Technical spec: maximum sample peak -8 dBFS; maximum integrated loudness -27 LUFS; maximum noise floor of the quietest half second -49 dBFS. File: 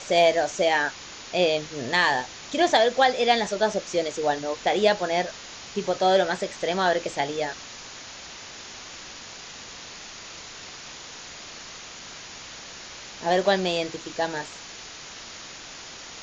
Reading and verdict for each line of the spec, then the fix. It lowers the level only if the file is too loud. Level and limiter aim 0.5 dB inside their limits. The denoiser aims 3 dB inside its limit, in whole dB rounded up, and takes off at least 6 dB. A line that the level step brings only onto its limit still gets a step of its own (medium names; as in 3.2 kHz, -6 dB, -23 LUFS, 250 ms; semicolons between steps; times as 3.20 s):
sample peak -7.5 dBFS: fail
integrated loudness -24.0 LUFS: fail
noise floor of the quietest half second -41 dBFS: fail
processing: noise reduction 8 dB, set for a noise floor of -41 dBFS; trim -3.5 dB